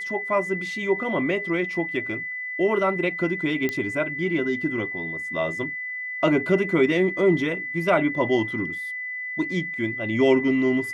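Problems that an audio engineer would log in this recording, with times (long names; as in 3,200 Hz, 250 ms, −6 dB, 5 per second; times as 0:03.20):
whistle 2,000 Hz −29 dBFS
0:03.69: click −12 dBFS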